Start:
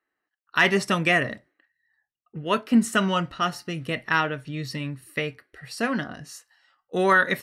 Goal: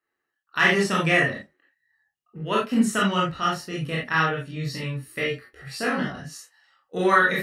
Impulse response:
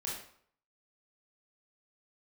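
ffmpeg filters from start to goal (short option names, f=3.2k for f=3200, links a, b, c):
-filter_complex "[0:a]asettb=1/sr,asplit=3[a][b][c];[a]atrim=end=4.704[d];[b]atrim=start=4.7:end=6.17,asetpts=PTS-STARTPTS,afade=t=in:d=0.004:c=qsin,afade=t=out:st=1.466:d=0.004:c=qsin,asplit=2[e][f];[f]adelay=16,volume=-3.5dB[g];[e][g]amix=inputs=2:normalize=0,atrim=end_sample=64827[h];[c]atrim=start=6.166[i];[d][h]acrossfade=d=0.004:c1=hsin:c2=qsin[j];[j][i]acrossfade=d=0.004:c1=qsin:c2=hsin[k];[1:a]atrim=start_sample=2205,atrim=end_sample=3969[l];[k][l]afir=irnorm=-1:irlink=0"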